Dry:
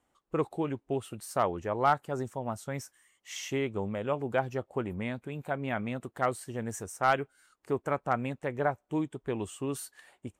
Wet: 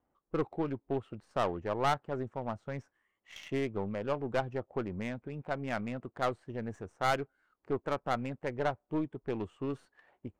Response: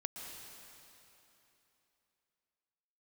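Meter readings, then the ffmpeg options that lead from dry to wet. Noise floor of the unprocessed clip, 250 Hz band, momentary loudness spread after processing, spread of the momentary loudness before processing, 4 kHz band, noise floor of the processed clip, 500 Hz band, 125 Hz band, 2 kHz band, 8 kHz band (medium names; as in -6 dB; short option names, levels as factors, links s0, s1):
-77 dBFS, -2.0 dB, 9 LU, 10 LU, -1.0 dB, -82 dBFS, -2.5 dB, -2.5 dB, -3.5 dB, -12.0 dB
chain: -af "aeval=exprs='(tanh(11.2*val(0)+0.45)-tanh(0.45))/11.2':c=same,adynamicsmooth=sensitivity=6.5:basefreq=1500"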